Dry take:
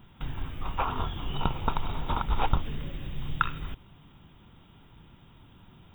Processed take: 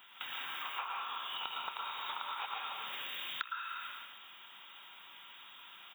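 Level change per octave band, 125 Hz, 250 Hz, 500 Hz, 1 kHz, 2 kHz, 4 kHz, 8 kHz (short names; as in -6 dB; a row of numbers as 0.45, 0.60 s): under -40 dB, -28.0 dB, -17.0 dB, -7.5 dB, -2.0 dB, +2.5 dB, n/a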